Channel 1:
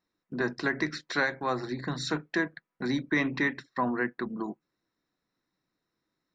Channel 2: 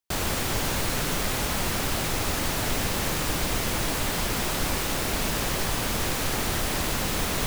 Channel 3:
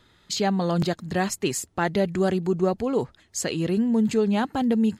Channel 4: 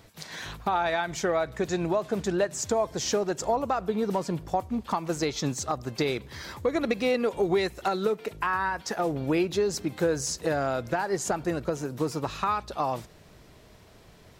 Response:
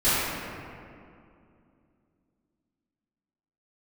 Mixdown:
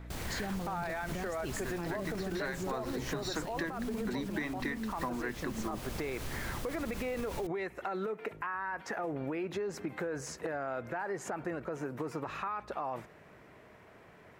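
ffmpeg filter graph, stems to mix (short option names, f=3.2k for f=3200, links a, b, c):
-filter_complex "[0:a]dynaudnorm=f=280:g=9:m=13.5dB,adelay=1250,volume=-11.5dB[a];[1:a]aeval=exprs='val(0)+0.0178*(sin(2*PI*60*n/s)+sin(2*PI*2*60*n/s)/2+sin(2*PI*3*60*n/s)/3+sin(2*PI*4*60*n/s)/4+sin(2*PI*5*60*n/s)/5)':c=same,volume=-15.5dB[b];[2:a]volume=-12dB[c];[3:a]highpass=f=480:p=1,highshelf=f=2.9k:t=q:w=1.5:g=-11.5,volume=0dB[d];[b][c][d]amix=inputs=3:normalize=0,lowshelf=f=340:g=6,alimiter=level_in=0.5dB:limit=-24dB:level=0:latency=1:release=37,volume=-0.5dB,volume=0dB[e];[a][e]amix=inputs=2:normalize=0,acompressor=threshold=-32dB:ratio=12"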